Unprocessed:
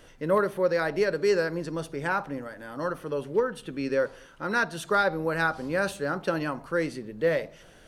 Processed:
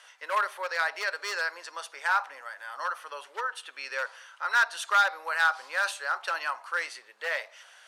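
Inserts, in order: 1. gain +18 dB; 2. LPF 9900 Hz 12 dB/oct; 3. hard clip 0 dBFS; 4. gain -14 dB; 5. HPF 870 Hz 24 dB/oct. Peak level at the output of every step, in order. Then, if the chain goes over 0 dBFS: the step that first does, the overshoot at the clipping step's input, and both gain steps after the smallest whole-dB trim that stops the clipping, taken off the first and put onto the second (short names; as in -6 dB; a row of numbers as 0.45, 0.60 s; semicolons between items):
+6.0, +6.0, 0.0, -14.0, -12.0 dBFS; step 1, 6.0 dB; step 1 +12 dB, step 4 -8 dB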